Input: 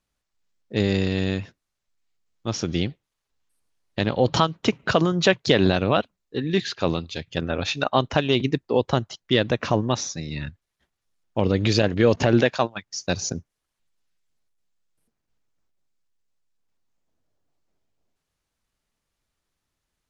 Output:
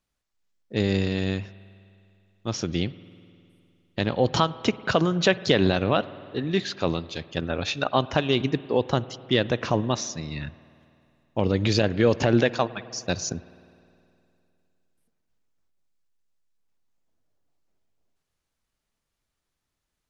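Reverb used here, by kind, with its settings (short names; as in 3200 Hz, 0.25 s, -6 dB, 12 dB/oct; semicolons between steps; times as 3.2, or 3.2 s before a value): spring tank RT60 2.6 s, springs 51 ms, chirp 65 ms, DRR 17.5 dB; gain -2 dB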